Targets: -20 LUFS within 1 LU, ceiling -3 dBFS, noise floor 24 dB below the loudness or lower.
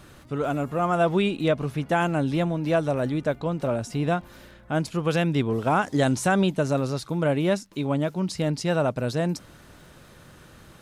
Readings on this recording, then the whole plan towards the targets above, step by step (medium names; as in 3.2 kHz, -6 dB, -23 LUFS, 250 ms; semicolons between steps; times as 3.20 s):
tick rate 23 per s; loudness -25.0 LUFS; peak level -11.5 dBFS; loudness target -20.0 LUFS
-> de-click; trim +5 dB